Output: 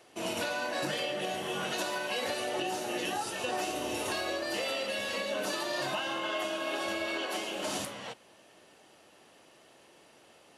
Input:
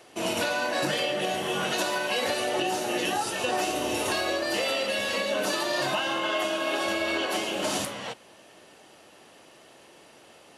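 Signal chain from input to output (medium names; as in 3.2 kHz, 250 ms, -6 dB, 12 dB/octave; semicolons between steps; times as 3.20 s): 7.06–7.68 s: bass shelf 130 Hz -9 dB; trim -6 dB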